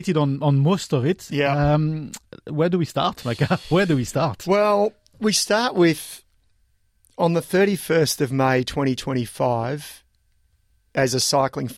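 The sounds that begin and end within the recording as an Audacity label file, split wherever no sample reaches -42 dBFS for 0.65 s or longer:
7.050000	9.980000	sound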